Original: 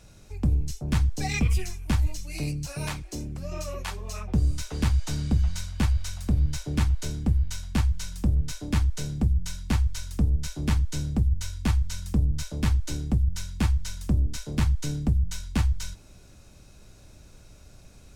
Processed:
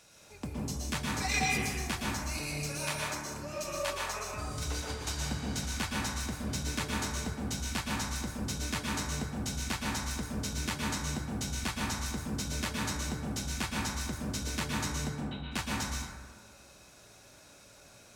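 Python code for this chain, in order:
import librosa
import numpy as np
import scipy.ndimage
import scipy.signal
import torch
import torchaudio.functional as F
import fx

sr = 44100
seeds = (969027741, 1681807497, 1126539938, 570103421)

y = fx.highpass(x, sr, hz=830.0, slope=6)
y = fx.over_compress(y, sr, threshold_db=-40.0, ratio=-0.5, at=(4.28, 4.94))
y = fx.cheby_ripple(y, sr, hz=4000.0, ripple_db=6, at=(15.08, 15.51), fade=0.02)
y = fx.rev_plate(y, sr, seeds[0], rt60_s=1.6, hf_ratio=0.3, predelay_ms=105, drr_db=-3.5)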